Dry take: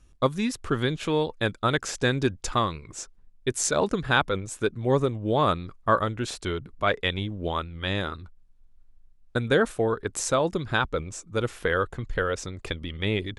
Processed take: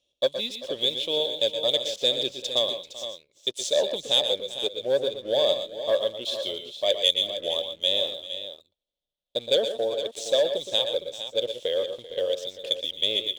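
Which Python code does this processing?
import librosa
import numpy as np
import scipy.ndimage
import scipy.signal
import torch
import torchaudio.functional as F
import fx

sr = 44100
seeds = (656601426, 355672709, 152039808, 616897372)

y = fx.double_bandpass(x, sr, hz=1400.0, octaves=2.6)
y = fx.leveller(y, sr, passes=1)
y = fx.high_shelf(y, sr, hz=2400.0, db=8.5)
y = fx.echo_multitap(y, sr, ms=(119, 135, 390, 462), db=(-9.5, -16.0, -17.0, -11.0))
y = y * 10.0 ** (3.5 / 20.0)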